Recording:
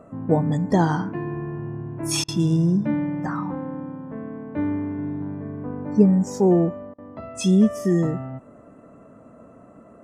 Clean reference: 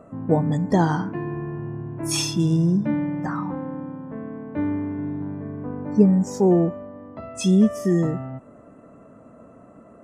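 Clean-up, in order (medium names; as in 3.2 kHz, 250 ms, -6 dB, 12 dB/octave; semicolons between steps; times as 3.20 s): interpolate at 2.24/6.94 s, 42 ms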